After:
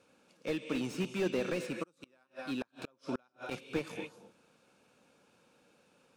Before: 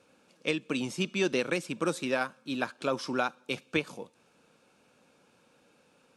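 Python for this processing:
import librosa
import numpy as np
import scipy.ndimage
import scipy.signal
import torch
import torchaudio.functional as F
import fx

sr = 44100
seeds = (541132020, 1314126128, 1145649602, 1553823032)

y = fx.rev_gated(x, sr, seeds[0], gate_ms=290, shape='rising', drr_db=10.5)
y = fx.gate_flip(y, sr, shuts_db=-22.0, range_db=-36, at=(1.82, 3.5), fade=0.02)
y = fx.slew_limit(y, sr, full_power_hz=39.0)
y = F.gain(torch.from_numpy(y), -3.0).numpy()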